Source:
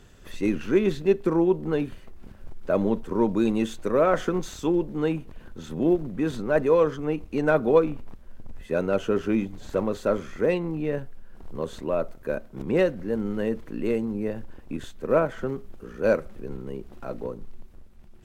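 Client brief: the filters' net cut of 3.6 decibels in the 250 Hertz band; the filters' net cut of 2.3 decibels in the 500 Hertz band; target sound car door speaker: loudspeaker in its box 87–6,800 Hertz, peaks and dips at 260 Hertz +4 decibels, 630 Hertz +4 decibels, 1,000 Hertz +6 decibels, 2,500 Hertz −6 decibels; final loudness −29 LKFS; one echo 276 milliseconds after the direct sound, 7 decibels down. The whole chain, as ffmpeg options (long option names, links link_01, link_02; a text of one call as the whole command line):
ffmpeg -i in.wav -af "highpass=87,equalizer=frequency=260:width_type=q:width=4:gain=4,equalizer=frequency=630:width_type=q:width=4:gain=4,equalizer=frequency=1000:width_type=q:width=4:gain=6,equalizer=frequency=2500:width_type=q:width=4:gain=-6,lowpass=frequency=6800:width=0.5412,lowpass=frequency=6800:width=1.3066,equalizer=frequency=250:width_type=o:gain=-5.5,equalizer=frequency=500:width_type=o:gain=-3.5,aecho=1:1:276:0.447,volume=-1.5dB" out.wav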